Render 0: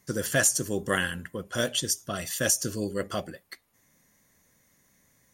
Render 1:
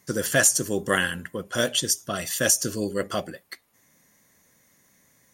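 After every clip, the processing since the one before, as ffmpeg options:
-af "lowshelf=f=83:g=-10,volume=4dB"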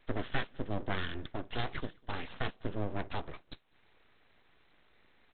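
-filter_complex "[0:a]acrossover=split=190[a][b];[b]acompressor=threshold=-43dB:ratio=2[c];[a][c]amix=inputs=2:normalize=0,aresample=8000,aeval=exprs='abs(val(0))':c=same,aresample=44100,asplit=2[d][e];[e]adelay=198.3,volume=-29dB,highshelf=f=4k:g=-4.46[f];[d][f]amix=inputs=2:normalize=0,volume=1dB"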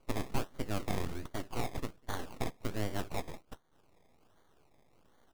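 -af "acrusher=samples=24:mix=1:aa=0.000001:lfo=1:lforange=14.4:lforate=1.3"

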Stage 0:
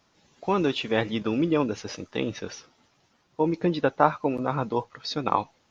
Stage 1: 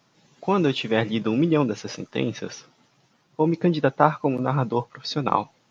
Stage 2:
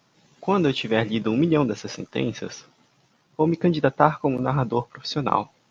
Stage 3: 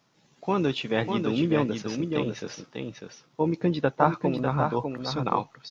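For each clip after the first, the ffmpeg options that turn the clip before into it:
-af "lowshelf=f=100:t=q:w=3:g=-8.5,volume=2dB"
-af "tremolo=f=69:d=0.261,volume=1.5dB"
-af "aecho=1:1:598:0.531,volume=-4.5dB"

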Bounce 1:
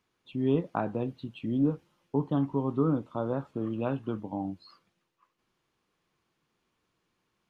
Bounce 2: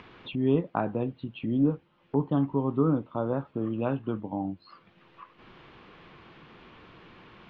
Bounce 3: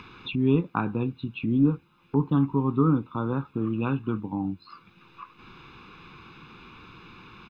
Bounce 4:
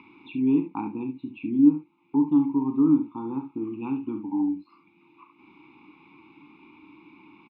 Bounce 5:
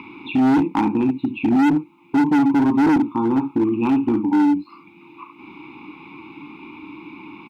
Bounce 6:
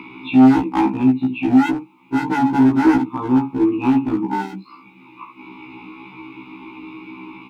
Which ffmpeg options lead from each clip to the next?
-af "lowpass=f=3.4k:w=0.5412,lowpass=f=3.4k:w=1.3066,acompressor=mode=upward:threshold=-33dB:ratio=2.5,volume=2dB"
-af "highshelf=f=3.4k:g=8,aecho=1:1:0.8:0.8"
-filter_complex "[0:a]asplit=3[a][b][c];[a]bandpass=f=300:t=q:w=8,volume=0dB[d];[b]bandpass=f=870:t=q:w=8,volume=-6dB[e];[c]bandpass=f=2.24k:t=q:w=8,volume=-9dB[f];[d][e][f]amix=inputs=3:normalize=0,asplit=2[g][h];[h]aecho=0:1:38|70:0.335|0.316[i];[g][i]amix=inputs=2:normalize=0,volume=7dB"
-filter_complex "[0:a]asplit=2[a][b];[b]alimiter=limit=-15.5dB:level=0:latency=1:release=110,volume=0.5dB[c];[a][c]amix=inputs=2:normalize=0,asoftclip=type=hard:threshold=-20.5dB,volume=7dB"
-af "afftfilt=real='re*1.73*eq(mod(b,3),0)':imag='im*1.73*eq(mod(b,3),0)':win_size=2048:overlap=0.75,volume=4.5dB"

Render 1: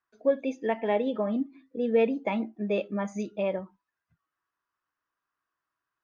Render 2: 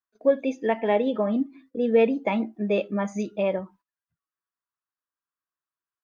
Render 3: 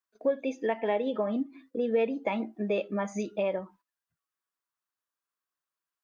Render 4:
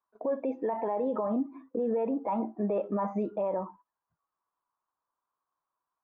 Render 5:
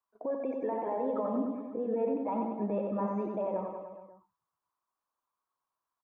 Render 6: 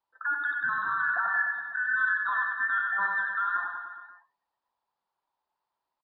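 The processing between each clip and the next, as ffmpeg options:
-af "agate=range=-16dB:threshold=-57dB:ratio=16:detection=peak,volume=4dB"
-af "bass=f=250:g=-6,treble=f=4k:g=0,acompressor=threshold=-31dB:ratio=2,volume=1.5dB"
-af "lowpass=f=990:t=q:w=3.6,alimiter=level_in=1.5dB:limit=-24dB:level=0:latency=1:release=31,volume=-1.5dB,volume=3dB"
-af "aecho=1:1:90|189|297.9|417.7|549.5:0.631|0.398|0.251|0.158|0.1,volume=-4dB"
-af "afftfilt=real='real(if(between(b,1,1012),(2*floor((b-1)/92)+1)*92-b,b),0)':imag='imag(if(between(b,1,1012),(2*floor((b-1)/92)+1)*92-b,b),0)*if(between(b,1,1012),-1,1)':win_size=2048:overlap=0.75,aresample=11025,aresample=44100,volume=4dB"

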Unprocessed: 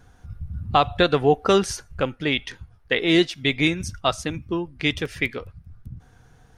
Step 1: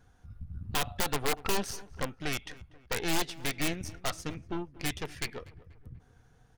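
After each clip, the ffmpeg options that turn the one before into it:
-filter_complex "[0:a]aeval=exprs='0.596*(cos(1*acos(clip(val(0)/0.596,-1,1)))-cos(1*PI/2))+0.266*(cos(3*acos(clip(val(0)/0.596,-1,1)))-cos(3*PI/2))+0.0299*(cos(8*acos(clip(val(0)/0.596,-1,1)))-cos(8*PI/2))':c=same,aeval=exprs='(mod(11.2*val(0)+1,2)-1)/11.2':c=same,asplit=2[a][b];[b]adelay=242,lowpass=f=2k:p=1,volume=-19dB,asplit=2[c][d];[d]adelay=242,lowpass=f=2k:p=1,volume=0.54,asplit=2[e][f];[f]adelay=242,lowpass=f=2k:p=1,volume=0.54,asplit=2[g][h];[h]adelay=242,lowpass=f=2k:p=1,volume=0.54[i];[a][c][e][g][i]amix=inputs=5:normalize=0"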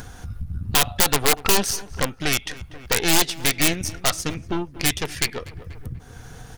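-filter_complex "[0:a]highshelf=f=3.4k:g=7.5,asplit=2[a][b];[b]acompressor=mode=upward:threshold=-29dB:ratio=2.5,volume=2dB[c];[a][c]amix=inputs=2:normalize=0,volume=2dB"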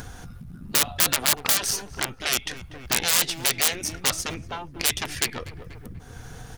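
-af "afftfilt=real='re*lt(hypot(re,im),0.224)':imag='im*lt(hypot(re,im),0.224)':win_size=1024:overlap=0.75"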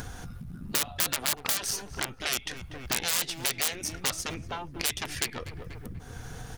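-af "acompressor=threshold=-35dB:ratio=1.5"

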